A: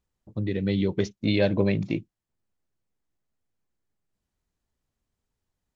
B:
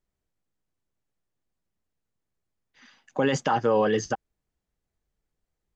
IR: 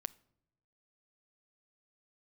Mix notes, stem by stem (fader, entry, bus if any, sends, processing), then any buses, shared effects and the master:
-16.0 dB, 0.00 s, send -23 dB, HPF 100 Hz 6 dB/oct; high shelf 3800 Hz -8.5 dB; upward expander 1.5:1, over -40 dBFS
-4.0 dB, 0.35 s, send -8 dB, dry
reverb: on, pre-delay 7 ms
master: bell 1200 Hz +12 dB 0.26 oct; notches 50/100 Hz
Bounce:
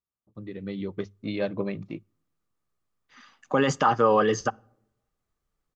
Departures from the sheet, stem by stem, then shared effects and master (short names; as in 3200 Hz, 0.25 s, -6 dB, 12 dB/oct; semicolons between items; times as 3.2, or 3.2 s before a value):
stem A -16.0 dB -> -5.5 dB; reverb return +7.5 dB